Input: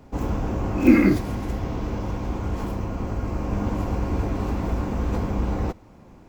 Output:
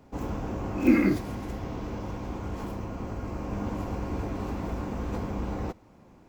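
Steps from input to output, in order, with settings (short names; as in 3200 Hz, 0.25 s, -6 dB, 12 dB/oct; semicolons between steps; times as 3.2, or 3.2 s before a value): low shelf 81 Hz -6.5 dB; gain -5 dB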